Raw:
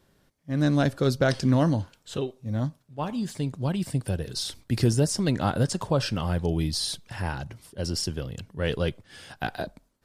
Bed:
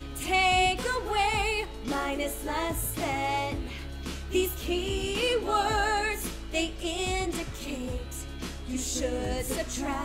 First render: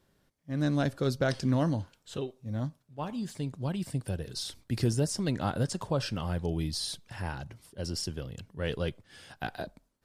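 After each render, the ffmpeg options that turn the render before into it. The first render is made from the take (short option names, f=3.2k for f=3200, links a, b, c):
-af "volume=-5.5dB"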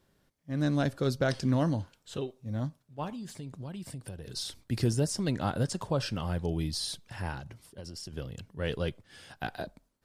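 -filter_complex "[0:a]asettb=1/sr,asplit=3[a][b][c];[a]atrim=end=3.094[d];[b]atrim=start=3.09:end=4.28,asetpts=PTS-STARTPTS,afade=t=in:d=0.004:c=qsin,afade=t=out:st=1.186:d=0.004:c=qsin,acompressor=threshold=-37dB:ratio=6:attack=3.2:release=140:knee=1:detection=peak[e];[c]atrim=start=4.276[f];[d][e]acrossfade=d=0.004:c1=hsin:c2=qsin[g];[g][f]acrossfade=d=0.004:c1=qsin:c2=hsin,asettb=1/sr,asplit=3[h][i][j];[h]atrim=end=7.394[k];[i]atrim=start=7.39:end=8.13,asetpts=PTS-STARTPTS,afade=t=in:d=0.004:c=qsin,afade=t=out:st=0.736:d=0.004:c=qsin,acompressor=threshold=-38dB:ratio=10:attack=3.2:release=140:knee=1:detection=peak[l];[j]atrim=start=8.126[m];[k][l]acrossfade=d=0.004:c1=hsin:c2=qsin[n];[n][m]acrossfade=d=0.004:c1=qsin:c2=hsin"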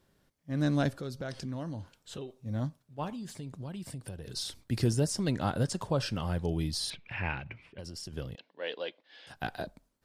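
-filter_complex "[0:a]asettb=1/sr,asplit=3[a][b][c];[a]atrim=end=1.004[d];[b]atrim=start=1:end=2.36,asetpts=PTS-STARTPTS,afade=t=in:d=0.004:c=qsin,afade=t=out:st=1.356:d=0.004:c=qsin,acompressor=threshold=-39dB:ratio=2.5:attack=3.2:release=140:knee=1:detection=peak[e];[c]atrim=start=2.356[f];[d][e]acrossfade=d=0.004:c1=hsin:c2=qsin[g];[g][f]acrossfade=d=0.004:c1=qsin:c2=hsin,asettb=1/sr,asplit=3[h][i][j];[h]atrim=end=6.904[k];[i]atrim=start=6.9:end=7.79,asetpts=PTS-STARTPTS,afade=t=in:d=0.004:c=qsin,afade=t=out:st=0.886:d=0.004:c=qsin,lowpass=f=2.4k:t=q:w=8.1[l];[j]atrim=start=7.786[m];[k][l]acrossfade=d=0.004:c1=hsin:c2=qsin[n];[n][m]acrossfade=d=0.004:c1=qsin:c2=hsin,asettb=1/sr,asplit=3[o][p][q];[o]atrim=end=8.354[r];[p]atrim=start=8.35:end=9.27,asetpts=PTS-STARTPTS,afade=t=in:d=0.004:c=qsin,afade=t=out:st=0.916:d=0.004:c=qsin,highpass=f=350:w=0.5412,highpass=f=350:w=1.3066,equalizer=f=390:t=q:w=4:g=-9,equalizer=f=1.3k:t=q:w=4:g=-8,equalizer=f=3.9k:t=q:w=4:g=4,lowpass=f=4.3k:w=0.5412,lowpass=f=4.3k:w=1.3066[s];[q]atrim=start=9.266[t];[r][s]acrossfade=d=0.004:c1=hsin:c2=qsin[u];[u][t]acrossfade=d=0.004:c1=qsin:c2=hsin"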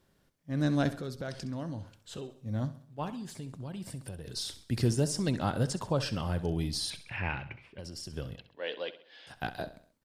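-af "aecho=1:1:66|132|198|264:0.188|0.0848|0.0381|0.0172"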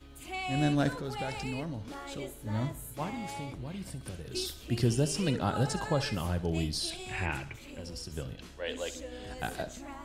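-filter_complex "[1:a]volume=-13dB[a];[0:a][a]amix=inputs=2:normalize=0"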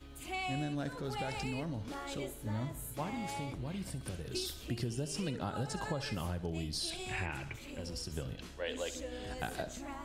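-af "acompressor=threshold=-33dB:ratio=10"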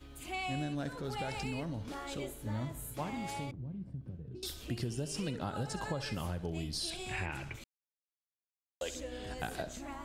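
-filter_complex "[0:a]asettb=1/sr,asplit=3[a][b][c];[a]atrim=end=3.514[d];[b]atrim=start=3.51:end=4.43,asetpts=PTS-STARTPTS,afade=t=in:d=0.004:c=qsin,afade=t=out:st=0.916:d=0.004:c=qsin,bandpass=f=140:t=q:w=1.1[e];[c]atrim=start=4.426[f];[d][e]acrossfade=d=0.004:c1=hsin:c2=qsin[g];[g][f]acrossfade=d=0.004:c1=qsin:c2=hsin,asplit=3[h][i][j];[h]atrim=end=7.64,asetpts=PTS-STARTPTS,afade=t=out:st=7.636:d=0.004:c=hsin[k];[i]atrim=start=7.64:end=8.81,asetpts=PTS-STARTPTS,volume=0[l];[j]atrim=start=8.81,asetpts=PTS-STARTPTS,afade=t=in:d=0.004:c=hsin[m];[k][l][m]concat=n=3:v=0:a=1"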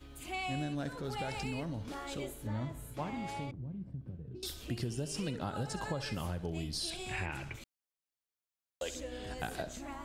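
-filter_complex "[0:a]asettb=1/sr,asplit=3[a][b][c];[a]atrim=end=2.474[d];[b]atrim=start=2.47:end=4.4,asetpts=PTS-STARTPTS,afade=t=in:d=0.004:c=qsin,afade=t=out:st=1.926:d=0.004:c=qsin,lowpass=f=4k:p=1[e];[c]atrim=start=4.396[f];[d][e]acrossfade=d=0.004:c1=hsin:c2=qsin[g];[g][f]acrossfade=d=0.004:c1=qsin:c2=hsin"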